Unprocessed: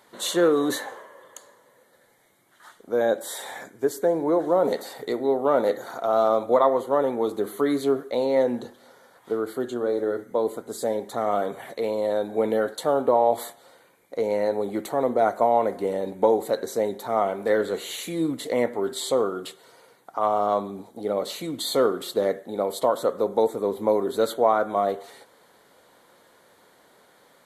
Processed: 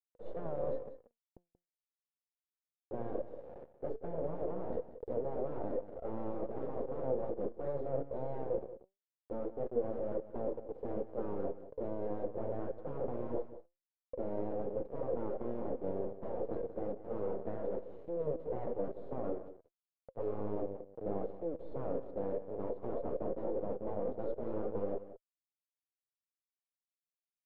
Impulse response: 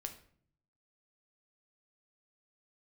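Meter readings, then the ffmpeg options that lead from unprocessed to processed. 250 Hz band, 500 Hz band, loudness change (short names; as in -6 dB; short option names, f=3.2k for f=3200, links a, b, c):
-14.0 dB, -14.5 dB, -15.5 dB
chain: -filter_complex "[0:a]aeval=exprs='val(0)+0.5*0.0501*sgn(val(0))':c=same,agate=range=-14dB:threshold=-23dB:ratio=16:detection=peak,afftfilt=real='re*lt(hypot(re,im),0.224)':imag='im*lt(hypot(re,im),0.224)':win_size=1024:overlap=0.75,asplit=2[a][b];[b]alimiter=level_in=2dB:limit=-24dB:level=0:latency=1:release=489,volume=-2dB,volume=0dB[c];[a][c]amix=inputs=2:normalize=0,acrusher=bits=3:dc=4:mix=0:aa=0.000001,flanger=delay=1.5:depth=7.3:regen=85:speed=0.2:shape=triangular,lowpass=f=510:t=q:w=4.9,asplit=2[d][e];[e]aecho=0:1:183:0.2[f];[d][f]amix=inputs=2:normalize=0,volume=-4dB"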